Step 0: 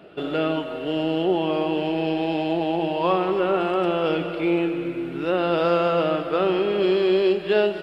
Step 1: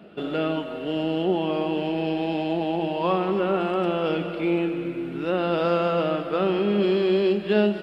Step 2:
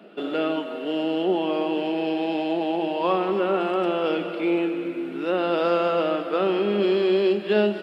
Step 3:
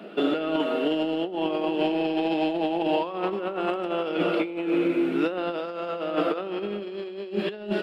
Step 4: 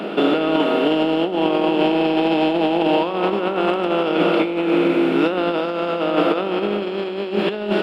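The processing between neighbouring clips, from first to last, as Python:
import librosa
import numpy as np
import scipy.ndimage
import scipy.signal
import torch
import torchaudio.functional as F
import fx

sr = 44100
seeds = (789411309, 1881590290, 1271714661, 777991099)

y1 = fx.peak_eq(x, sr, hz=210.0, db=13.5, octaves=0.29)
y1 = y1 * librosa.db_to_amplitude(-2.5)
y2 = scipy.signal.sosfilt(scipy.signal.butter(4, 220.0, 'highpass', fs=sr, output='sos'), y1)
y2 = y2 * librosa.db_to_amplitude(1.0)
y3 = fx.over_compress(y2, sr, threshold_db=-27.0, ratio=-0.5)
y3 = y3 * librosa.db_to_amplitude(1.5)
y4 = fx.bin_compress(y3, sr, power=0.6)
y4 = y4 * librosa.db_to_amplitude(4.5)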